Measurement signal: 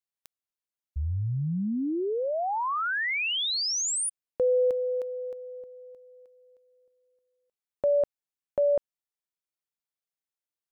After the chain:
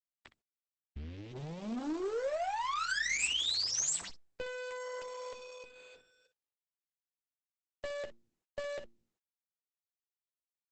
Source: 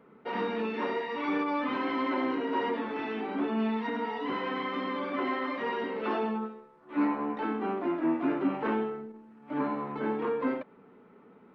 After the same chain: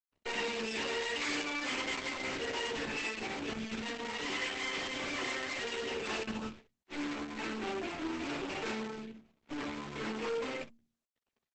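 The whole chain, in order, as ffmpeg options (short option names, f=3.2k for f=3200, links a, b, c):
-filter_complex "[0:a]anlmdn=0.0251,superequalizer=13b=0.631:14b=0.631,areverse,acompressor=mode=upward:threshold=-53dB:ratio=1.5:attack=0.92:release=40:knee=2.83:detection=peak,areverse,aeval=exprs='sgn(val(0))*max(abs(val(0))-0.00178,0)':c=same,highshelf=f=1.8k:t=q:w=1.5:g=11.5,bandreject=f=115.7:t=h:w=4,bandreject=f=231.4:t=h:w=4,bandreject=f=347.1:t=h:w=4,aeval=exprs='(tanh(63.1*val(0)+0.45)-tanh(0.45))/63.1':c=same,acrossover=split=250|1500[a][b][c];[a]acompressor=threshold=-56dB:ratio=3:attack=45:release=24:knee=2.83:detection=peak[d];[d][b][c]amix=inputs=3:normalize=0,aecho=1:1:13|63:0.501|0.188,aeval=exprs='0.0631*(cos(1*acos(clip(val(0)/0.0631,-1,1)))-cos(1*PI/2))+0.002*(cos(2*acos(clip(val(0)/0.0631,-1,1)))-cos(2*PI/2))+0.00708*(cos(4*acos(clip(val(0)/0.0631,-1,1)))-cos(4*PI/2))+0.00447*(cos(5*acos(clip(val(0)/0.0631,-1,1)))-cos(5*PI/2))':c=same" -ar 48000 -c:a libopus -b:a 10k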